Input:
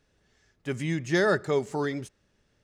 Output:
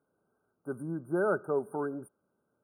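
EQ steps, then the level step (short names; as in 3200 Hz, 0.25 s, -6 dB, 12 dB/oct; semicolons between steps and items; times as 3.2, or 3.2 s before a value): HPF 200 Hz 12 dB/oct; brick-wall FIR band-stop 1600–8800 Hz; -4.0 dB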